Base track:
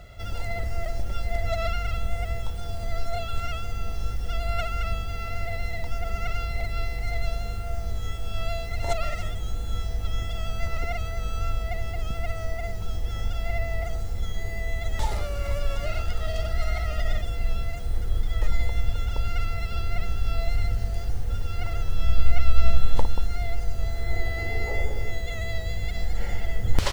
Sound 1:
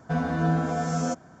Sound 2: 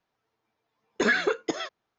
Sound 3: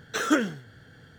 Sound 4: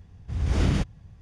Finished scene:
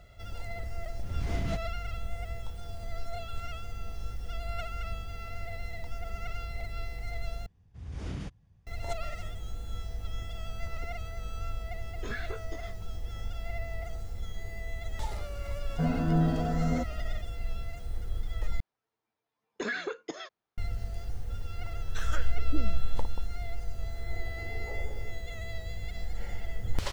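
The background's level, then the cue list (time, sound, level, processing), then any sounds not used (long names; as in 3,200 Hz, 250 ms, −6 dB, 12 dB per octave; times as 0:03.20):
base track −8.5 dB
0:00.74: mix in 4 −8.5 dB + brickwall limiter −16 dBFS
0:07.46: overwrite with 4 −14.5 dB
0:11.03: mix in 2 −14 dB + chorus effect 1.5 Hz, delay 18 ms, depth 4.8 ms
0:15.69: mix in 1 −7.5 dB + tilt shelving filter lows +7 dB, about 850 Hz
0:18.60: overwrite with 2 −8.5 dB + brickwall limiter −15.5 dBFS
0:21.81: mix in 3 −11.5 dB + multiband delay without the direct sound highs, lows 410 ms, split 510 Hz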